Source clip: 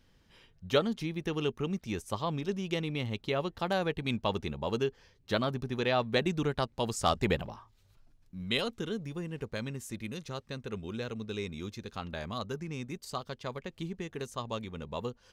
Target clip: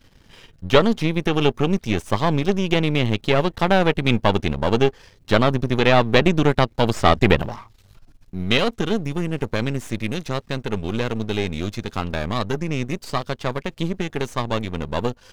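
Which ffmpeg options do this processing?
ffmpeg -i in.wav -filter_complex "[0:a]aeval=exprs='if(lt(val(0),0),0.251*val(0),val(0))':channel_layout=same,acrossover=split=4500[link_01][link_02];[link_02]acompressor=threshold=-55dB:ratio=4:attack=1:release=60[link_03];[link_01][link_03]amix=inputs=2:normalize=0,apsyclip=17.5dB,volume=-1.5dB" out.wav

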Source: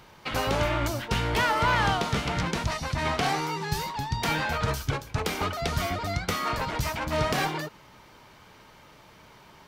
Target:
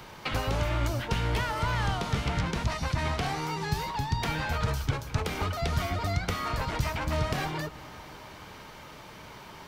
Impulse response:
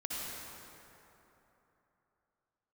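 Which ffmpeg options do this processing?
-filter_complex "[0:a]acrossover=split=120|4300[link_01][link_02][link_03];[link_01]acompressor=threshold=-33dB:ratio=4[link_04];[link_02]acompressor=threshold=-38dB:ratio=4[link_05];[link_03]acompressor=threshold=-53dB:ratio=4[link_06];[link_04][link_05][link_06]amix=inputs=3:normalize=0,asplit=2[link_07][link_08];[1:a]atrim=start_sample=2205,asetrate=34398,aresample=44100,adelay=104[link_09];[link_08][link_09]afir=irnorm=-1:irlink=0,volume=-21.5dB[link_10];[link_07][link_10]amix=inputs=2:normalize=0,volume=6dB"

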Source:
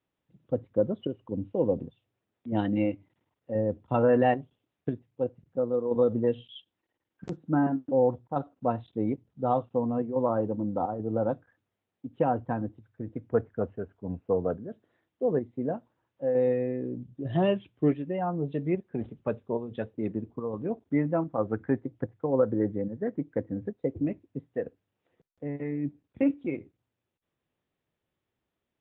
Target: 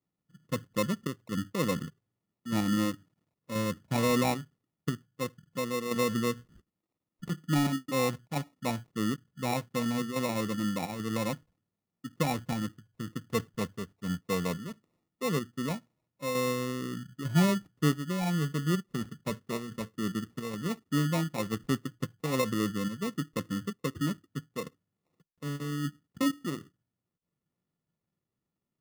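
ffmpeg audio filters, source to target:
ffmpeg -i in.wav -af "lowpass=frequency=3000:poles=1,equalizer=frequency=170:width=1.4:gain=12,acrusher=samples=28:mix=1:aa=0.000001,volume=-7dB" out.wav

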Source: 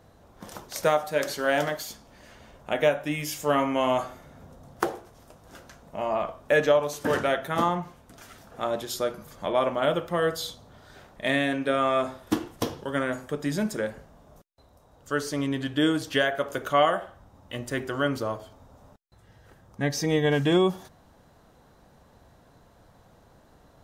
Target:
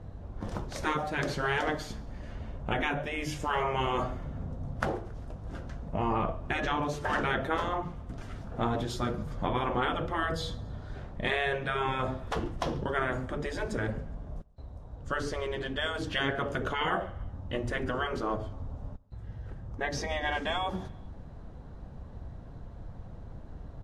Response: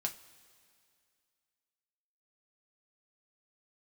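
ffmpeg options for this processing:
-filter_complex "[0:a]lowpass=frequency=12000:width=0.5412,lowpass=frequency=12000:width=1.3066,aemphasis=mode=reproduction:type=riaa,afftfilt=real='re*lt(hypot(re,im),0.251)':imag='im*lt(hypot(re,im),0.251)':win_size=1024:overlap=0.75,asplit=2[link_01][link_02];[link_02]aecho=0:1:138|276|414:0.0631|0.0334|0.0177[link_03];[link_01][link_03]amix=inputs=2:normalize=0,volume=1.5dB" -ar 44100 -c:a libvorbis -b:a 48k

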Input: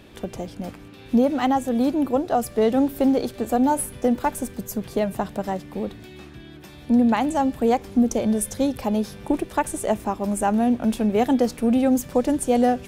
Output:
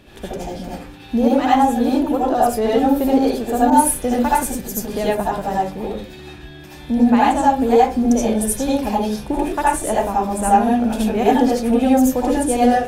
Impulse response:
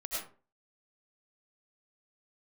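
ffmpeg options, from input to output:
-filter_complex "[1:a]atrim=start_sample=2205,asetrate=57330,aresample=44100[link_01];[0:a][link_01]afir=irnorm=-1:irlink=0,asettb=1/sr,asplit=3[link_02][link_03][link_04];[link_02]atrim=end=3.704[link_05];[link_03]atrim=start=3.7:end=5.15,asetpts=PTS-STARTPTS,afade=type=in:duration=0.004:curve=qsin,afade=type=out:start_time=1.446:duration=0.004:curve=qsin,adynamicequalizer=threshold=0.0141:dfrequency=1900:dqfactor=0.7:tfrequency=1900:tqfactor=0.7:attack=5:release=100:ratio=0.375:range=2:mode=boostabove:tftype=highshelf[link_06];[link_04]atrim=start=5.146[link_07];[link_05][link_06]acrossfade=duration=0.004:curve1=hsin:curve2=qsin[link_08];[link_08][link_07]acrossfade=duration=0.004:curve1=qsin:curve2=hsin,volume=6dB"

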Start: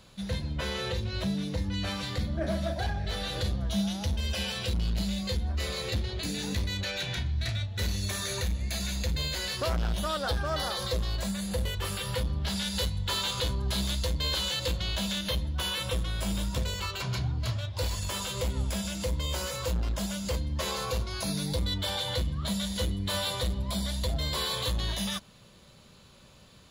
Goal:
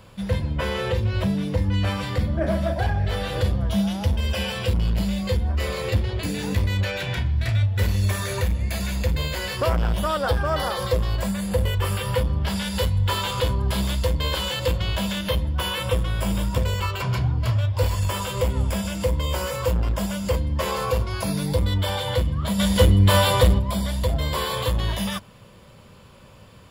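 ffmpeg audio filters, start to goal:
ffmpeg -i in.wav -filter_complex "[0:a]asplit=3[link_01][link_02][link_03];[link_01]afade=type=out:start_time=22.58:duration=0.02[link_04];[link_02]acontrast=69,afade=type=in:start_time=22.58:duration=0.02,afade=type=out:start_time=23.58:duration=0.02[link_05];[link_03]afade=type=in:start_time=23.58:duration=0.02[link_06];[link_04][link_05][link_06]amix=inputs=3:normalize=0,equalizer=frequency=100:width_type=o:width=0.33:gain=7,equalizer=frequency=500:width_type=o:width=0.33:gain=4,equalizer=frequency=1000:width_type=o:width=0.33:gain=4,equalizer=frequency=4000:width_type=o:width=0.33:gain=-11,equalizer=frequency=6300:width_type=o:width=0.33:gain=-10,equalizer=frequency=10000:width_type=o:width=0.33:gain=-4,volume=6.5dB" out.wav

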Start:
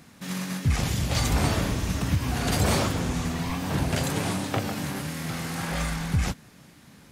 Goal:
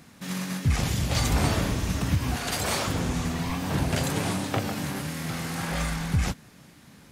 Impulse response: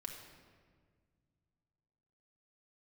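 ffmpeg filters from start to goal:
-filter_complex "[0:a]asettb=1/sr,asplit=3[link_01][link_02][link_03];[link_01]atrim=end=2.364[link_04];[link_02]atrim=start=2.36:end=2.88,asetpts=PTS-STARTPTS,afade=type=in:duration=0.004:curve=qsin,afade=type=out:start_time=0.516:duration=0.004:curve=qsin,lowshelf=frequency=420:gain=-11[link_05];[link_03]atrim=start=2.876[link_06];[link_04][link_05]acrossfade=duration=0.004:curve1=hsin:curve2=qsin[link_07];[link_07][link_06]acrossfade=duration=0.004:curve1=qsin:curve2=hsin"

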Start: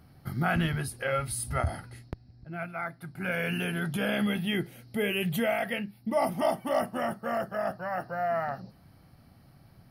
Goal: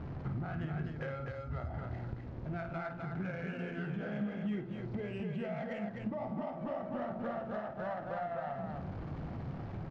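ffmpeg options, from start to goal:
ffmpeg -i in.wav -filter_complex "[0:a]aeval=exprs='val(0)+0.5*0.00841*sgn(val(0))':channel_layout=same,bandreject=frequency=57.39:width_type=h:width=4,bandreject=frequency=114.78:width_type=h:width=4,bandreject=frequency=172.17:width_type=h:width=4,bandreject=frequency=229.56:width_type=h:width=4,bandreject=frequency=286.95:width_type=h:width=4,bandreject=frequency=344.34:width_type=h:width=4,bandreject=frequency=401.73:width_type=h:width=4,bandreject=frequency=459.12:width_type=h:width=4,bandreject=frequency=516.51:width_type=h:width=4,bandreject=frequency=573.9:width_type=h:width=4,bandreject=frequency=631.29:width_type=h:width=4,bandreject=frequency=688.68:width_type=h:width=4,bandreject=frequency=746.07:width_type=h:width=4,bandreject=frequency=803.46:width_type=h:width=4,bandreject=frequency=860.85:width_type=h:width=4,bandreject=frequency=918.24:width_type=h:width=4,bandreject=frequency=975.63:width_type=h:width=4,bandreject=frequency=1033.02:width_type=h:width=4,bandreject=frequency=1090.41:width_type=h:width=4,bandreject=frequency=1147.8:width_type=h:width=4,bandreject=frequency=1205.19:width_type=h:width=4,bandreject=frequency=1262.58:width_type=h:width=4,bandreject=frequency=1319.97:width_type=h:width=4,bandreject=frequency=1377.36:width_type=h:width=4,bandreject=frequency=1434.75:width_type=h:width=4,bandreject=frequency=1492.14:width_type=h:width=4,bandreject=frequency=1549.53:width_type=h:width=4,bandreject=frequency=1606.92:width_type=h:width=4,alimiter=level_in=2dB:limit=-24dB:level=0:latency=1:release=344,volume=-2dB,acompressor=threshold=-40dB:ratio=6,aresample=16000,volume=35dB,asoftclip=hard,volume=-35dB,aresample=44100,adynamicsmooth=sensitivity=2.5:basefreq=1200,asplit=2[link_01][link_02];[link_02]aecho=0:1:52.48|253.6:0.398|0.631[link_03];[link_01][link_03]amix=inputs=2:normalize=0,volume=4dB" out.wav

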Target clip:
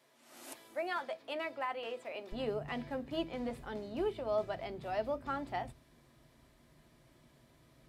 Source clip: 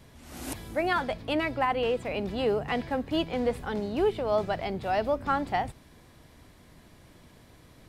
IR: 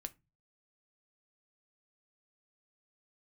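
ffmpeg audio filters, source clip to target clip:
-filter_complex "[0:a]asetnsamples=nb_out_samples=441:pad=0,asendcmd='2.32 highpass f 55',highpass=430[link_01];[1:a]atrim=start_sample=2205,asetrate=88200,aresample=44100[link_02];[link_01][link_02]afir=irnorm=-1:irlink=0"

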